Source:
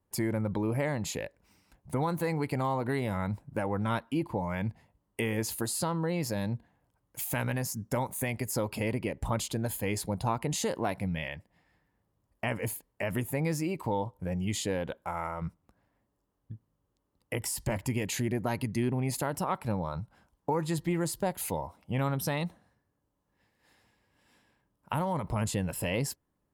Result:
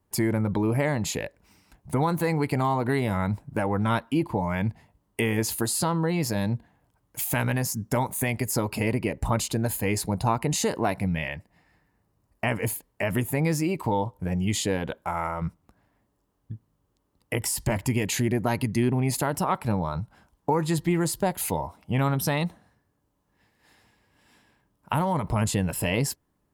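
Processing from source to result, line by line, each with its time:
8.56–12.48 notch 3300 Hz, Q 9.1
whole clip: notch 530 Hz, Q 12; gain +6 dB

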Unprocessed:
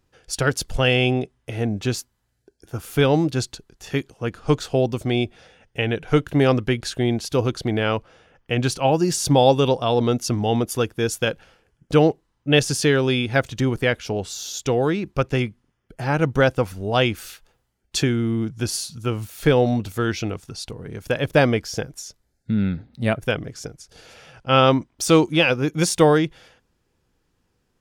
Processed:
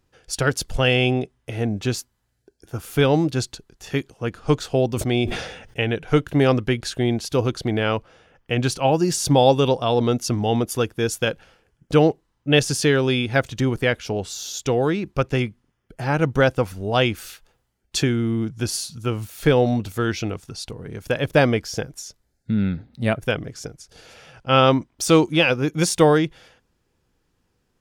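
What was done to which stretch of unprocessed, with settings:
4.92–5.84 sustainer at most 59 dB/s

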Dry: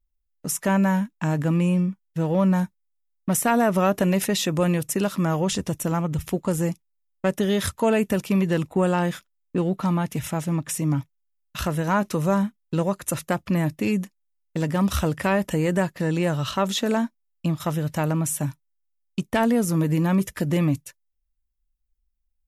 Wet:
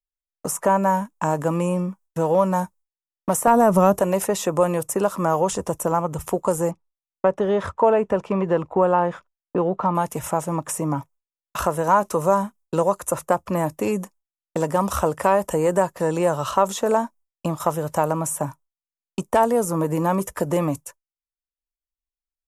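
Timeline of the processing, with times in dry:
3.47–3.99 tone controls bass +15 dB, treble +3 dB
6.71–9.95 LPF 2100 Hz
whole clip: expander -41 dBFS; graphic EQ 125/250/500/1000/2000/4000/8000 Hz -6/-5/+6/+10/-6/-8/+6 dB; three-band squash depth 40%

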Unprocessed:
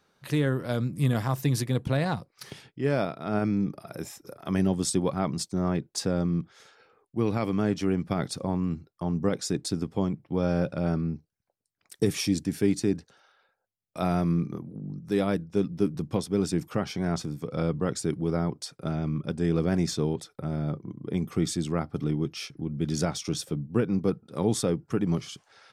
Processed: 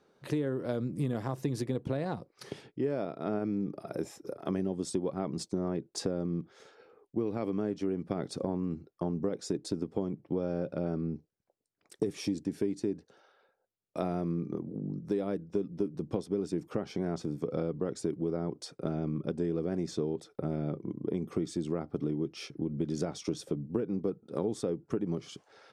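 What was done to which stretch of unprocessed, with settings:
20.51–20.93 bell 2500 Hz +6 dB
whole clip: LPF 10000 Hz 12 dB/oct; bell 390 Hz +12 dB 2 oct; compressor, threshold -23 dBFS; gain -5.5 dB

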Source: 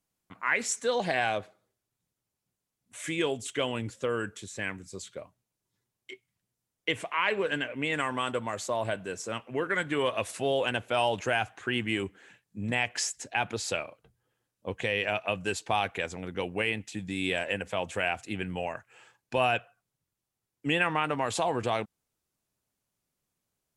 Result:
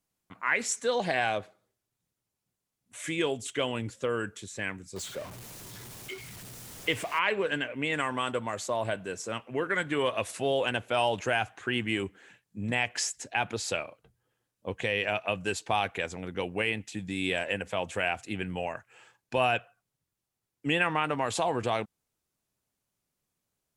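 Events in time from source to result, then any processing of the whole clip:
4.96–7.19 zero-crossing step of -38.5 dBFS

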